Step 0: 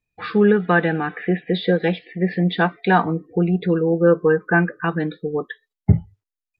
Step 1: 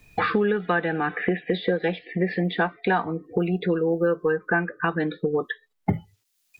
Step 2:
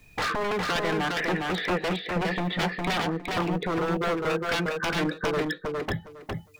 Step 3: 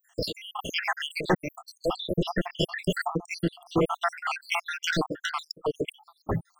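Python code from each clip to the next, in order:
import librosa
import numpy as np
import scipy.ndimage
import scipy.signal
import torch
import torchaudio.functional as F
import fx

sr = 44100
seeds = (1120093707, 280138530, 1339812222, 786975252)

y1 = fx.dynamic_eq(x, sr, hz=160.0, q=0.85, threshold_db=-30.0, ratio=4.0, max_db=-6)
y1 = fx.band_squash(y1, sr, depth_pct=100)
y1 = F.gain(torch.from_numpy(y1), -3.5).numpy()
y2 = 10.0 ** (-22.0 / 20.0) * (np.abs((y1 / 10.0 ** (-22.0 / 20.0) + 3.0) % 4.0 - 2.0) - 1.0)
y2 = fx.echo_feedback(y2, sr, ms=409, feedback_pct=18, wet_db=-3.0)
y3 = fx.spec_dropout(y2, sr, seeds[0], share_pct=81)
y3 = F.gain(torch.from_numpy(y3), 6.0).numpy()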